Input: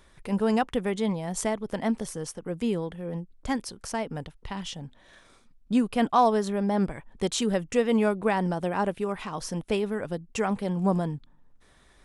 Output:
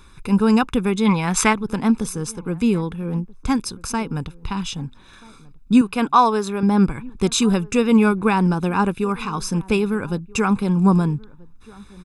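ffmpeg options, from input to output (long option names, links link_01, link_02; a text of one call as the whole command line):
ffmpeg -i in.wav -filter_complex "[0:a]asettb=1/sr,asplit=3[link_01][link_02][link_03];[link_01]atrim=end=5.814[link_04];[link_02]atrim=start=5.81:end=6.63,asetpts=PTS-STARTPTS,afade=type=in:duration=0.004:curve=qsin,afade=type=out:start_time=0.816:duration=0.004:curve=qsin,bass=frequency=250:gain=-11,treble=frequency=4000:gain=-2[link_05];[link_03]atrim=start=6.626[link_06];[link_04][link_05]acrossfade=duration=0.004:curve1=hsin:curve2=qsin[link_07];[link_07][link_06]acrossfade=duration=0.004:curve1=qsin:curve2=hsin,aecho=1:1:0.8:0.75,asplit=3[link_08][link_09][link_10];[link_08]afade=type=out:start_time=1.05:duration=0.02[link_11];[link_09]equalizer=frequency=1900:width=0.52:gain=14.5,afade=type=in:start_time=1.05:duration=0.02,afade=type=out:start_time=1.52:duration=0.02[link_12];[link_10]afade=type=in:start_time=1.52:duration=0.02[link_13];[link_11][link_12][link_13]amix=inputs=3:normalize=0,asplit=2[link_14][link_15];[link_15]adelay=1283,volume=-23dB,highshelf=frequency=4000:gain=-28.9[link_16];[link_14][link_16]amix=inputs=2:normalize=0,volume=6.5dB" out.wav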